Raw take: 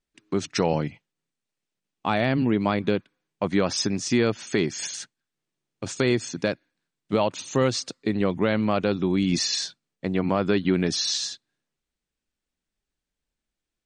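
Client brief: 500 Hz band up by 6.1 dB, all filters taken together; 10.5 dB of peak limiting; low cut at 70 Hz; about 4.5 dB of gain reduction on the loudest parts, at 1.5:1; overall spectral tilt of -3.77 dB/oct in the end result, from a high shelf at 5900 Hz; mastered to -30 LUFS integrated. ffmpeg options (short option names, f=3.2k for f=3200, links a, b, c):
-af "highpass=70,equalizer=f=500:t=o:g=7.5,highshelf=f=5.9k:g=5,acompressor=threshold=-25dB:ratio=1.5,volume=-1dB,alimiter=limit=-19dB:level=0:latency=1"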